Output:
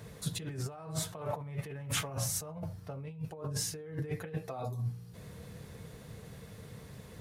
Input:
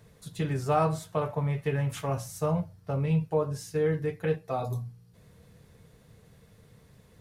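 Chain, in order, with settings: HPF 47 Hz 6 dB/oct; negative-ratio compressor -39 dBFS, ratio -1

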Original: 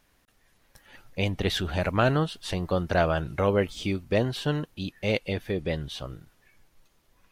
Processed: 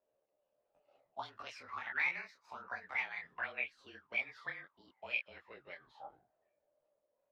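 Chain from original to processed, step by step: gliding pitch shift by +8.5 st ending unshifted; auto-wah 600–2400 Hz, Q 14, up, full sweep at -21.5 dBFS; frequency shift -30 Hz; detuned doubles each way 50 cents; gain +9.5 dB

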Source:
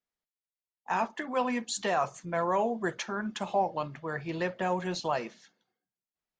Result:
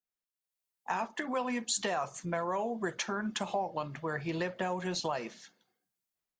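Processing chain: compressor 4:1, threshold -34 dBFS, peak gain reduction 10 dB; high shelf 6800 Hz +6.5 dB; AGC gain up to 11 dB; gain -8 dB

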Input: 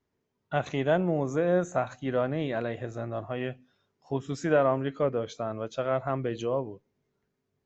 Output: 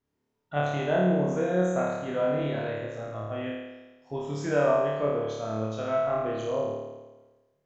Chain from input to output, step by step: flutter echo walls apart 4.7 m, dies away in 1.2 s; gain -5 dB

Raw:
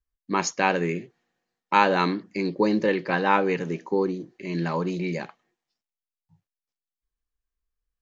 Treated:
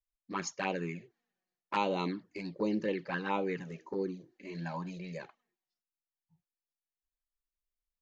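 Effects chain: envelope flanger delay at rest 5.8 ms, full sweep at -17 dBFS; gain -8.5 dB

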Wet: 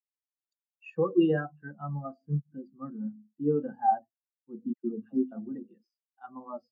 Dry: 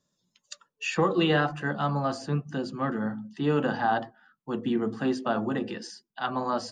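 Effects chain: 4.73–5.32 dispersion lows, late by 0.117 s, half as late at 1200 Hz; spectral expander 2.5:1

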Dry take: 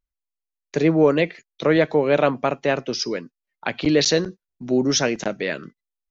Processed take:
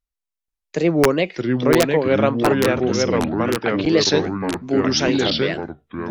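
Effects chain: wrapped overs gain 6 dB; echoes that change speed 0.49 s, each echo -3 st, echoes 3; wow and flutter 130 cents

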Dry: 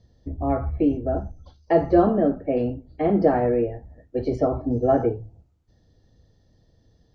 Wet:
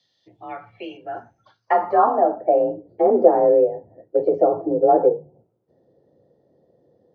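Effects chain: band-pass sweep 3300 Hz -> 440 Hz, 0.73–2.85; in parallel at +2 dB: compressor, threshold -34 dBFS, peak gain reduction 17.5 dB; on the sum: frequency shift +40 Hz; dynamic EQ 1000 Hz, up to +7 dB, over -38 dBFS, Q 1.5; gain +5 dB

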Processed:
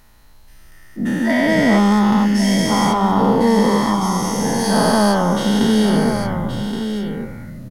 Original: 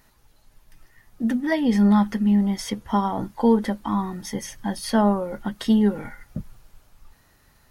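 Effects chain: spectral dilation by 0.48 s; echo 1.122 s -8 dB

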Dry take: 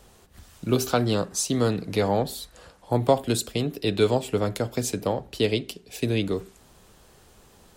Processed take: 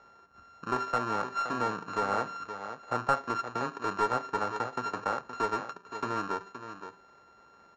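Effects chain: sample sorter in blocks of 32 samples; steep low-pass 7000 Hz 96 dB/oct; in parallel at -2 dB: compressor, threshold -33 dBFS, peak gain reduction 18.5 dB; on the sum: HPF 760 Hz 6 dB/oct; on a send: echo 0.52 s -11 dB; on the sum: soft clip -13 dBFS, distortion -15 dB; resonant high shelf 2000 Hz -10.5 dB, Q 1.5; gain -3.5 dB

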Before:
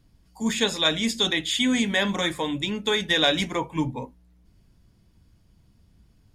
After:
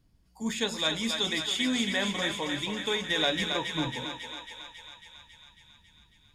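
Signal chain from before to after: thinning echo 0.274 s, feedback 71%, high-pass 560 Hz, level -4.5 dB; gain -6.5 dB

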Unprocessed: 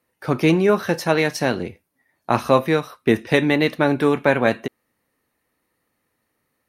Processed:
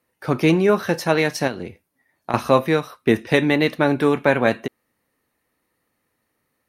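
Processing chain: 1.47–2.34 compressor 6:1, threshold -24 dBFS, peak gain reduction 10.5 dB

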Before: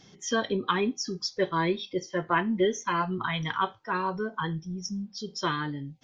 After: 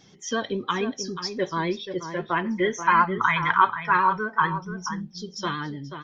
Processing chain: spectral gain 2.46–4.52, 840–2600 Hz +10 dB; outdoor echo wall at 83 m, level -9 dB; vibrato 11 Hz 41 cents

